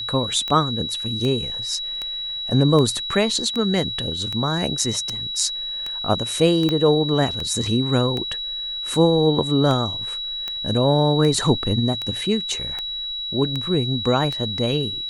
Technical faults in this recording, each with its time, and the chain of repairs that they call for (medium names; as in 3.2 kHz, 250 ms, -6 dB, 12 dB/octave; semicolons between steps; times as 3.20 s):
tick 78 rpm -14 dBFS
whine 3.9 kHz -26 dBFS
6.69 s: pop -10 dBFS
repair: de-click; band-stop 3.9 kHz, Q 30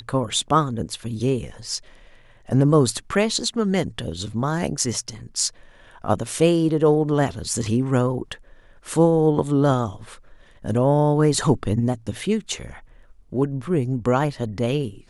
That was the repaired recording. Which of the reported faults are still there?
6.69 s: pop